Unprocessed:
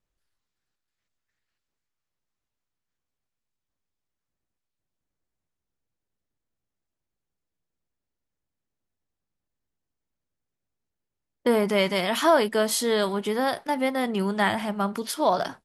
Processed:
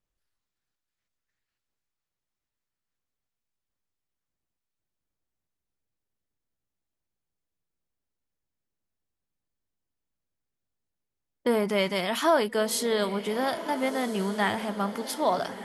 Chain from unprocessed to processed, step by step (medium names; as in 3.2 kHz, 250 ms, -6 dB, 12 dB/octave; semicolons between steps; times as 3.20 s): echo that smears into a reverb 1392 ms, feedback 43%, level -12.5 dB; trim -3 dB